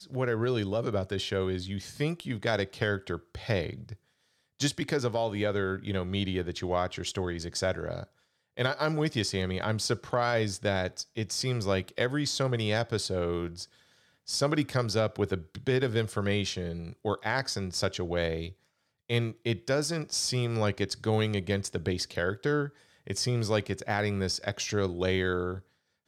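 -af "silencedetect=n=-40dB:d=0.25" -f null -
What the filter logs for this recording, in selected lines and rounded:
silence_start: 3.94
silence_end: 4.60 | silence_duration: 0.66
silence_start: 8.04
silence_end: 8.57 | silence_duration: 0.54
silence_start: 13.64
silence_end: 14.28 | silence_duration: 0.64
silence_start: 18.51
silence_end: 19.10 | silence_duration: 0.59
silence_start: 22.69
silence_end: 23.07 | silence_duration: 0.38
silence_start: 25.60
silence_end: 26.08 | silence_duration: 0.48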